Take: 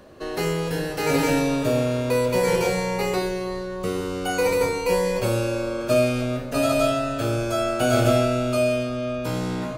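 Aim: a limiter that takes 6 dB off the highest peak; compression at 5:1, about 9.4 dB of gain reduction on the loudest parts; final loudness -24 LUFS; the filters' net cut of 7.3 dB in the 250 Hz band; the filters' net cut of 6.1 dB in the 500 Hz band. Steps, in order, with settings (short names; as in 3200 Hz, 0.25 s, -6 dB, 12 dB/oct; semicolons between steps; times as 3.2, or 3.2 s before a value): bell 250 Hz -7.5 dB; bell 500 Hz -6 dB; compressor 5:1, threshold -29 dBFS; gain +10 dB; limiter -14.5 dBFS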